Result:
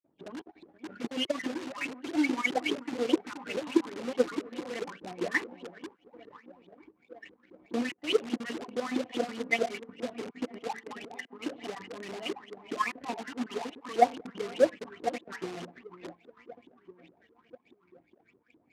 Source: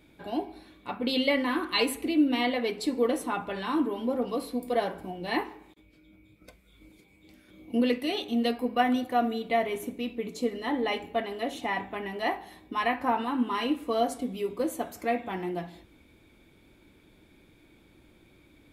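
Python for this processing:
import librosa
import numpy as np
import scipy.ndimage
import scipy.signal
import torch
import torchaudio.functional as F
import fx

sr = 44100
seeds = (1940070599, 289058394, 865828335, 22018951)

p1 = fx.spec_dropout(x, sr, seeds[0], share_pct=30)
p2 = p1 + fx.echo_alternate(p1, sr, ms=478, hz=890.0, feedback_pct=70, wet_db=-10.5, dry=0)
p3 = fx.phaser_stages(p2, sr, stages=4, low_hz=640.0, high_hz=1500.0, hz=2.0, feedback_pct=5)
p4 = fx.filter_lfo_lowpass(p3, sr, shape='saw_up', hz=4.8, low_hz=310.0, high_hz=3700.0, q=7.6)
p5 = (np.mod(10.0 ** (29.5 / 20.0) * p4 + 1.0, 2.0) - 1.0) / 10.0 ** (29.5 / 20.0)
p6 = p4 + F.gain(torch.from_numpy(p5), -4.0).numpy()
p7 = fx.power_curve(p6, sr, exponent=1.4)
y = fx.bandpass_edges(p7, sr, low_hz=130.0, high_hz=7000.0)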